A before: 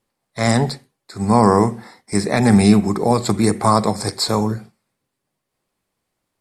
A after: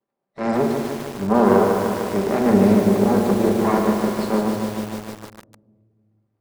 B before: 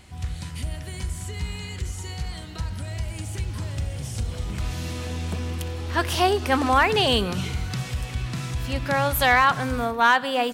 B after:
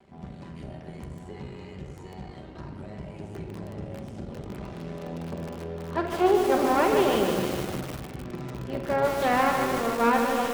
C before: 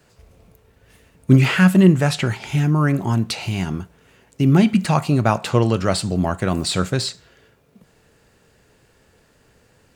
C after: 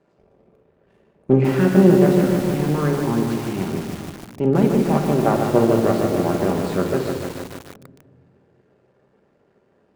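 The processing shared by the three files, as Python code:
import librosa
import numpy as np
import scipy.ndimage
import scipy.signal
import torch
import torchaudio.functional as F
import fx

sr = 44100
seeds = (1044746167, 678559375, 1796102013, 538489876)

y = np.maximum(x, 0.0)
y = fx.bandpass_q(y, sr, hz=420.0, q=0.82)
y = fx.doubler(y, sr, ms=47.0, db=-12.0)
y = fx.room_shoebox(y, sr, seeds[0], volume_m3=2500.0, walls='mixed', distance_m=1.2)
y = fx.echo_crushed(y, sr, ms=150, feedback_pct=80, bits=6, wet_db=-5.0)
y = y * librosa.db_to_amplitude(3.0)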